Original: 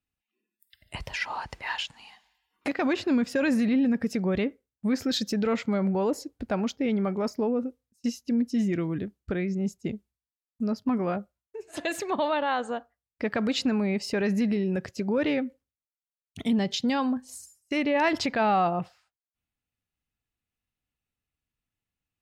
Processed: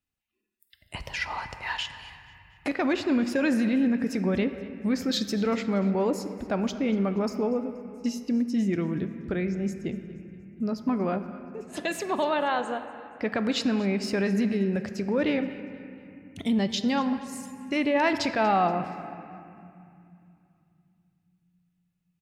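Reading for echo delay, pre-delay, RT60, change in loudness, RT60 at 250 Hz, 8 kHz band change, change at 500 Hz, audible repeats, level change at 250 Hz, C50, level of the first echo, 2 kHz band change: 238 ms, 3 ms, 2.5 s, +0.5 dB, 4.7 s, 0.0 dB, +0.5 dB, 2, +0.5 dB, 9.5 dB, -19.0 dB, +0.5 dB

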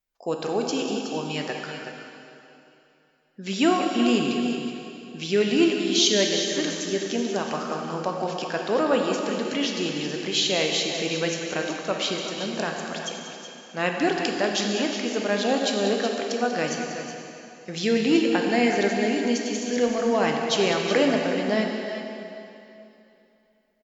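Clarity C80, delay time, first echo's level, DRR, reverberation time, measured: 2.0 dB, 190 ms, -10.5 dB, 0.5 dB, 2.9 s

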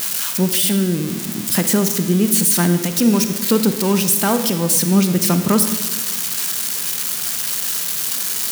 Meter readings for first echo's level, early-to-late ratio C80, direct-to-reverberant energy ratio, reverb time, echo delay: no echo, 11.0 dB, 8.5 dB, 1.3 s, no echo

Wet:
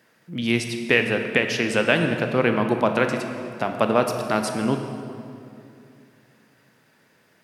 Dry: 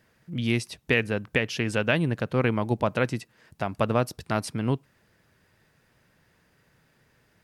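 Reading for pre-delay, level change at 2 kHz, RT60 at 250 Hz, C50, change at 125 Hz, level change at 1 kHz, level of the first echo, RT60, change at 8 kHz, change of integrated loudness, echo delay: 19 ms, +5.5 dB, 3.0 s, 6.0 dB, -1.5 dB, +6.0 dB, no echo, 2.6 s, +5.5 dB, +4.5 dB, no echo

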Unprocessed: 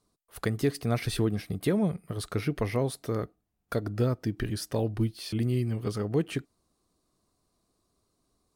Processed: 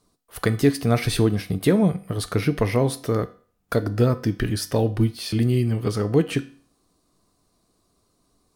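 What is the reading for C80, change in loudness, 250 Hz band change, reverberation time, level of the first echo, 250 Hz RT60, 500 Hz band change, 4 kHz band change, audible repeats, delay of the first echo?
20.5 dB, +7.5 dB, +8.0 dB, 0.45 s, no echo, 0.45 s, +8.0 dB, +8.0 dB, no echo, no echo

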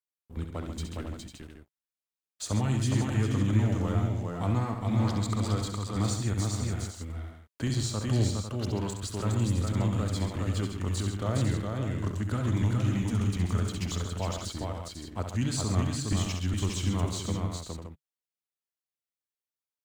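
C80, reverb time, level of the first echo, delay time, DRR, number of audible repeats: no reverb, no reverb, -7.5 dB, 67 ms, no reverb, 5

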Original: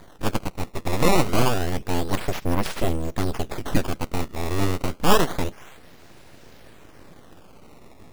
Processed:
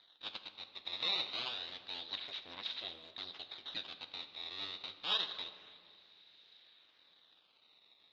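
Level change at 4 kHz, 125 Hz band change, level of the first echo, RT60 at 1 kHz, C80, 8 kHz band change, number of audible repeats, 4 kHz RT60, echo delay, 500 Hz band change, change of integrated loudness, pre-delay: -3.0 dB, -40.0 dB, no echo, 1.9 s, 11.5 dB, under -30 dB, no echo, 1.2 s, no echo, -28.5 dB, -14.5 dB, 5 ms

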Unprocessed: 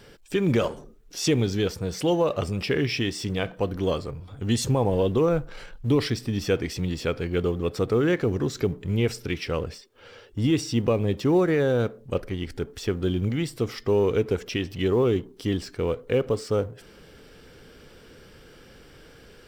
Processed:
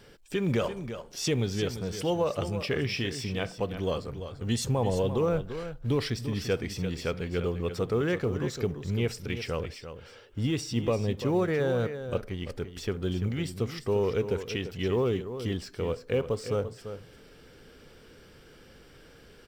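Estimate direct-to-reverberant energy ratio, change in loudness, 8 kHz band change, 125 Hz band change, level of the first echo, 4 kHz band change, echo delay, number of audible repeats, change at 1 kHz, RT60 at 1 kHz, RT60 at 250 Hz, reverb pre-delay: no reverb, -5.0 dB, -3.5 dB, -4.0 dB, -10.5 dB, -3.5 dB, 342 ms, 1, -3.5 dB, no reverb, no reverb, no reverb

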